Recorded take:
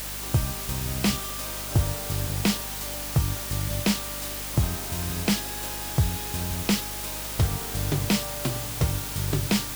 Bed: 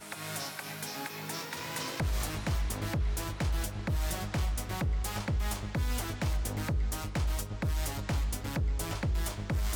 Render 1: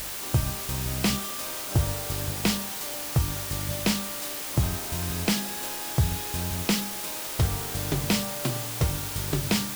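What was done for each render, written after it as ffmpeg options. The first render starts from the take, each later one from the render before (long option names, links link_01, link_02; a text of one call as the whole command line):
ffmpeg -i in.wav -af "bandreject=frequency=50:width_type=h:width=4,bandreject=frequency=100:width_type=h:width=4,bandreject=frequency=150:width_type=h:width=4,bandreject=frequency=200:width_type=h:width=4,bandreject=frequency=250:width_type=h:width=4" out.wav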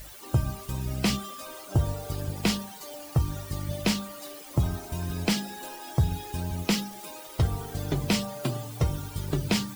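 ffmpeg -i in.wav -af "afftdn=noise_reduction=15:noise_floor=-35" out.wav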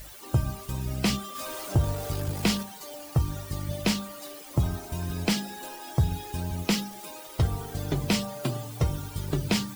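ffmpeg -i in.wav -filter_complex "[0:a]asettb=1/sr,asplit=3[link_01][link_02][link_03];[link_01]atrim=end=1.354[link_04];[link_02]atrim=start=1.35:end=2.63,asetpts=PTS-STARTPTS,afade=type=in:duration=0.004:curve=qsin,afade=type=out:start_time=1.276:duration=0.004:curve=qsin,aeval=exprs='val(0)+0.5*0.0158*sgn(val(0))':channel_layout=same[link_05];[link_03]atrim=start=2.626[link_06];[link_04][link_05]acrossfade=duration=0.004:curve1=hsin:curve2=qsin[link_07];[link_07][link_06]acrossfade=duration=0.004:curve1=qsin:curve2=hsin" out.wav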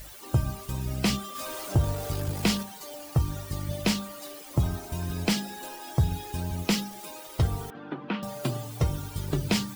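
ffmpeg -i in.wav -filter_complex "[0:a]asettb=1/sr,asplit=3[link_01][link_02][link_03];[link_01]atrim=end=7.704[link_04];[link_02]atrim=start=7.7:end=8.23,asetpts=PTS-STARTPTS,afade=type=in:duration=0.004:curve=qsin,afade=type=out:start_time=0.526:duration=0.004:curve=qsin,highpass=frequency=230:width=0.5412,highpass=frequency=230:width=1.3066,equalizer=frequency=410:width_type=q:width=4:gain=-8,equalizer=frequency=640:width_type=q:width=4:gain=-9,equalizer=frequency=1400:width_type=q:width=4:gain=4,equalizer=frequency=2100:width_type=q:width=4:gain=-8,lowpass=frequency=2500:width=0.5412,lowpass=frequency=2500:width=1.3066[link_05];[link_03]atrim=start=8.226[link_06];[link_04][link_05]acrossfade=duration=0.004:curve1=hsin:curve2=qsin[link_07];[link_07][link_06]acrossfade=duration=0.004:curve1=qsin:curve2=hsin" out.wav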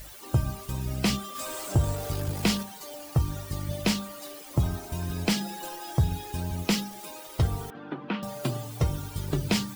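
ffmpeg -i in.wav -filter_complex "[0:a]asettb=1/sr,asplit=3[link_01][link_02][link_03];[link_01]atrim=end=1.394[link_04];[link_02]atrim=start=1.39:end=1.96,asetpts=PTS-STARTPTS,afade=type=in:duration=0.004:curve=qsin,afade=type=out:start_time=0.566:duration=0.004:curve=qsin,equalizer=frequency=7800:width_type=o:width=0.22:gain=8.5[link_05];[link_03]atrim=start=1.956[link_06];[link_04][link_05]acrossfade=duration=0.004:curve1=hsin:curve2=qsin[link_07];[link_07][link_06]acrossfade=duration=0.004:curve1=qsin:curve2=hsin,asettb=1/sr,asplit=3[link_08][link_09][link_10];[link_08]atrim=end=5.404[link_11];[link_09]atrim=start=5.4:end=5.98,asetpts=PTS-STARTPTS,afade=type=in:duration=0.004:curve=qsin,afade=type=out:start_time=0.576:duration=0.004:curve=qsin,aecho=1:1:5.8:0.65,atrim=end_sample=25578[link_12];[link_10]atrim=start=5.976[link_13];[link_11][link_12]acrossfade=duration=0.004:curve1=hsin:curve2=qsin[link_14];[link_14][link_13]acrossfade=duration=0.004:curve1=qsin:curve2=hsin" out.wav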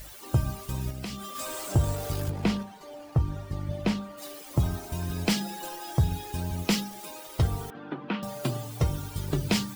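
ffmpeg -i in.wav -filter_complex "[0:a]asettb=1/sr,asplit=3[link_01][link_02][link_03];[link_01]atrim=end=0.904[link_04];[link_02]atrim=start=0.9:end=1.33,asetpts=PTS-STARTPTS,afade=type=in:duration=0.004:curve=qsin,afade=type=out:start_time=0.426:duration=0.004:curve=qsin,acompressor=threshold=-33dB:ratio=5:attack=3.2:release=140:knee=1:detection=peak[link_05];[link_03]atrim=start=1.326[link_06];[link_04][link_05]acrossfade=duration=0.004:curve1=hsin:curve2=qsin[link_07];[link_07][link_06]acrossfade=duration=0.004:curve1=qsin:curve2=hsin,asplit=3[link_08][link_09][link_10];[link_08]afade=type=out:start_time=2.29:duration=0.02[link_11];[link_09]lowpass=frequency=1500:poles=1,afade=type=in:start_time=2.29:duration=0.02,afade=type=out:start_time=4.17:duration=0.02[link_12];[link_10]afade=type=in:start_time=4.17:duration=0.02[link_13];[link_11][link_12][link_13]amix=inputs=3:normalize=0" out.wav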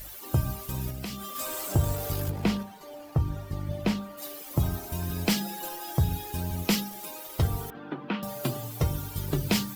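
ffmpeg -i in.wav -af "equalizer=frequency=13000:width_type=o:width=0.33:gain=10.5,bandreject=frequency=60:width_type=h:width=6,bandreject=frequency=120:width_type=h:width=6" out.wav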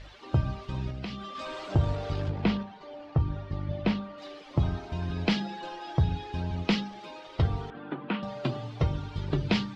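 ffmpeg -i in.wav -af "lowpass=frequency=4200:width=0.5412,lowpass=frequency=4200:width=1.3066" out.wav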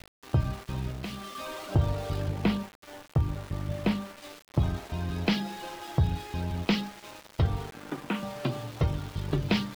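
ffmpeg -i in.wav -af "aeval=exprs='val(0)*gte(abs(val(0)),0.00944)':channel_layout=same" out.wav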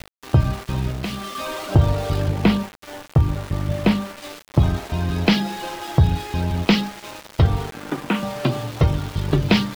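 ffmpeg -i in.wav -af "volume=9.5dB" out.wav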